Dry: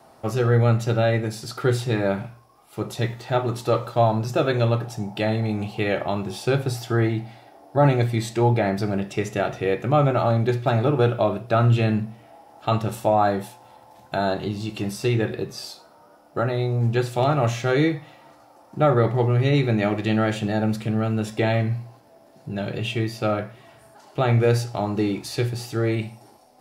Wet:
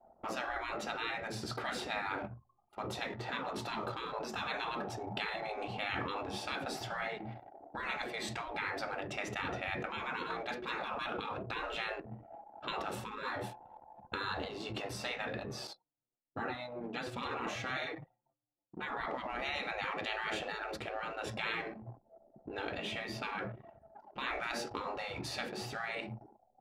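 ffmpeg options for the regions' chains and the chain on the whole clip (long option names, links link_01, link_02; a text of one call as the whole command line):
ffmpeg -i in.wav -filter_complex "[0:a]asettb=1/sr,asplit=3[link_01][link_02][link_03];[link_01]atrim=end=15.674[link_04];[link_02]atrim=start=15.67:end=19.01,asetpts=PTS-STARTPTS,afade=type=in:duration=0.004:curve=qsin,afade=type=out:start_time=3.336:duration=0.004:curve=qsin,lowshelf=frequency=250:gain=-4,agate=range=-33dB:threshold=-44dB:ratio=3:release=100:detection=peak,flanger=delay=6.1:depth=1.9:regen=-7:speed=1:shape=sinusoidal[link_05];[link_03]atrim=start=19.006[link_06];[link_04][link_05]acrossfade=duration=0.004:curve1=hsin:curve2=qsin[link_07];[link_07][link_06]acrossfade=duration=0.004:curve1=qsin:curve2=hsin,afftfilt=real='re*lt(hypot(re,im),0.112)':imag='im*lt(hypot(re,im),0.112)':win_size=1024:overlap=0.75,anlmdn=0.0631,lowpass=frequency=2100:poles=1" out.wav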